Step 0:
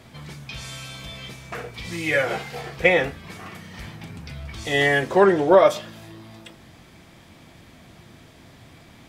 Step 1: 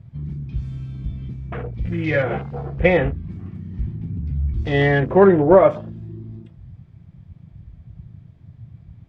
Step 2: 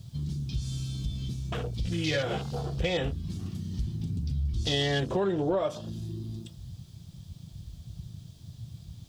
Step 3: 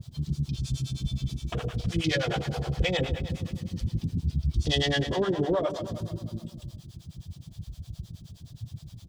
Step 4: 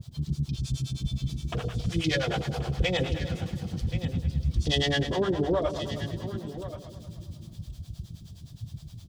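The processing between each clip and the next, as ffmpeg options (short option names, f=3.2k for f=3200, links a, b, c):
-af "afwtdn=0.02,aemphasis=mode=reproduction:type=riaa"
-af "alimiter=limit=-9.5dB:level=0:latency=1:release=270,aexciter=amount=7.8:drive=9.5:freq=3.3k,acompressor=threshold=-28dB:ratio=2,volume=-2dB"
-filter_complex "[0:a]asplit=2[a][b];[b]aecho=0:1:158|316|474|632|790|948|1106:0.316|0.18|0.103|0.0586|0.0334|0.019|0.0108[c];[a][c]amix=inputs=2:normalize=0,acrossover=split=520[d][e];[d]aeval=exprs='val(0)*(1-1/2+1/2*cos(2*PI*9.6*n/s))':c=same[f];[e]aeval=exprs='val(0)*(1-1/2-1/2*cos(2*PI*9.6*n/s))':c=same[g];[f][g]amix=inputs=2:normalize=0,volume=6dB"
-af "aecho=1:1:1079:0.224"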